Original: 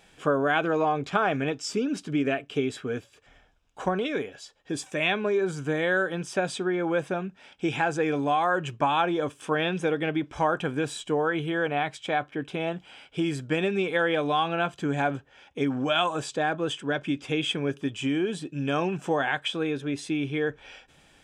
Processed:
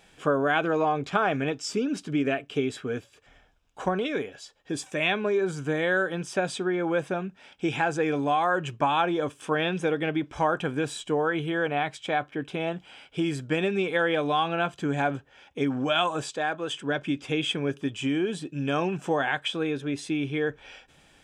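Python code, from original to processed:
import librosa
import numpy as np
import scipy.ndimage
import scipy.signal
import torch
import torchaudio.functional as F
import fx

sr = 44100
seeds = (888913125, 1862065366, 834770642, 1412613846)

y = fx.low_shelf(x, sr, hz=350.0, db=-9.5, at=(16.31, 16.74))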